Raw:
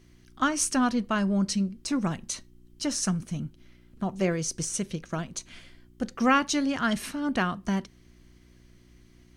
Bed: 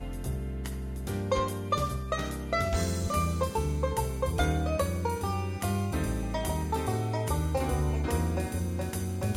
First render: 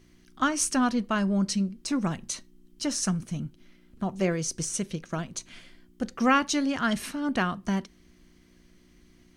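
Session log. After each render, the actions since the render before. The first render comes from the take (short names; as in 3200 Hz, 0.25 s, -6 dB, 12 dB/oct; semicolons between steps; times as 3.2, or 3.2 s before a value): de-hum 60 Hz, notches 2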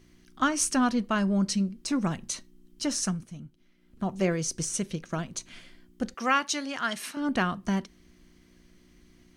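2.99–4.06 dip -9.5 dB, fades 0.31 s; 6.14–7.17 HPF 740 Hz 6 dB/oct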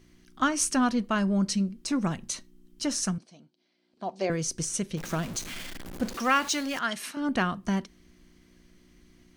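3.18–4.3 speaker cabinet 390–7400 Hz, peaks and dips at 690 Hz +5 dB, 1300 Hz -8 dB, 1900 Hz -5 dB, 2800 Hz -3 dB, 4500 Hz +8 dB, 6800 Hz -7 dB; 4.97–6.79 zero-crossing step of -34.5 dBFS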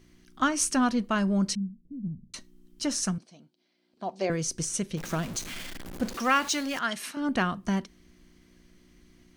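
1.55–2.34 ladder low-pass 240 Hz, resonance 30%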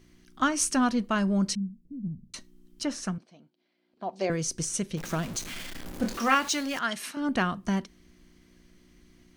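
2.83–4.13 tone controls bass -3 dB, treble -11 dB; 5.73–6.35 doubler 26 ms -5 dB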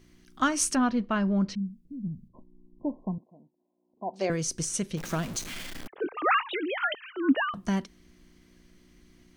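0.75–1.59 air absorption 220 m; 2.28–4.14 brick-wall FIR low-pass 1100 Hz; 5.87–7.54 sine-wave speech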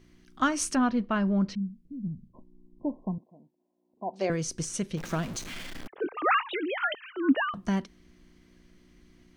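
high shelf 6200 Hz -7.5 dB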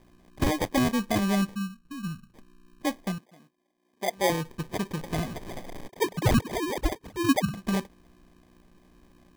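LFO low-pass sine 5.1 Hz 540–6900 Hz; sample-and-hold 32×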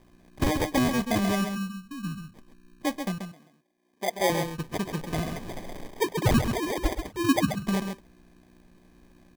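echo 0.134 s -7 dB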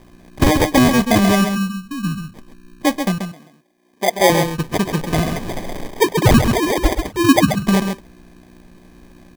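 gain +11.5 dB; limiter -3 dBFS, peak gain reduction 2.5 dB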